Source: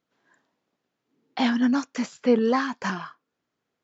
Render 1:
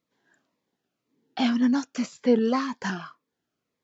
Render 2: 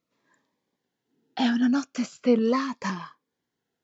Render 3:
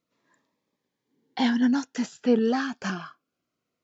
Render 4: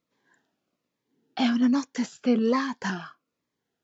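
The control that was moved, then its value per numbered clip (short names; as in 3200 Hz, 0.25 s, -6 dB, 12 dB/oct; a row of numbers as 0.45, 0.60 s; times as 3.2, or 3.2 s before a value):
cascading phaser, rate: 1.9, 0.39, 0.25, 1.2 Hz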